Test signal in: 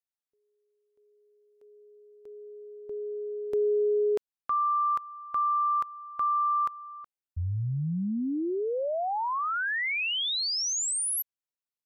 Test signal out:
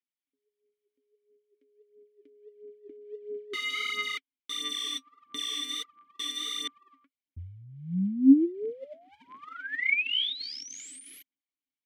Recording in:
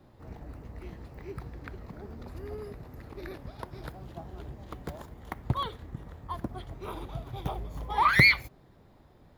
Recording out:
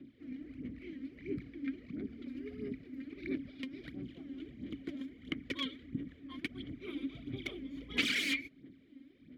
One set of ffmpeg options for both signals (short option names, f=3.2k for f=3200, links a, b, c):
-filter_complex "[0:a]aeval=exprs='(mod(14.1*val(0)+1,2)-1)/14.1':c=same,aphaser=in_gain=1:out_gain=1:delay=3.8:decay=0.66:speed=1.5:type=sinusoidal,asplit=3[a][b][c];[a]bandpass=f=270:t=q:w=8,volume=0dB[d];[b]bandpass=f=2.29k:t=q:w=8,volume=-6dB[e];[c]bandpass=f=3.01k:t=q:w=8,volume=-9dB[f];[d][e][f]amix=inputs=3:normalize=0,volume=9dB"